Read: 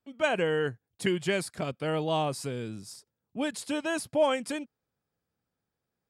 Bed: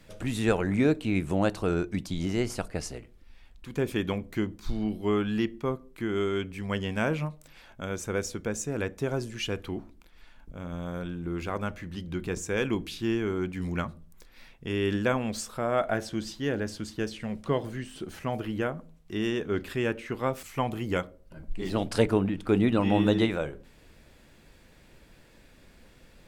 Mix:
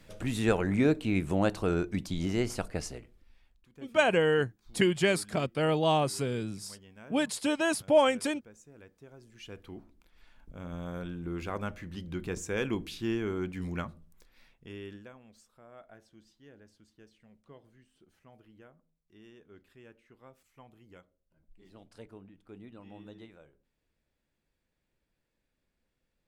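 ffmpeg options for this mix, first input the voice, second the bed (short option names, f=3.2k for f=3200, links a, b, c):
-filter_complex "[0:a]adelay=3750,volume=2.5dB[a];[1:a]volume=18dB,afade=t=out:st=2.78:d=0.91:silence=0.0841395,afade=t=in:st=9.19:d=1.49:silence=0.105925,afade=t=out:st=13.58:d=1.53:silence=0.0749894[b];[a][b]amix=inputs=2:normalize=0"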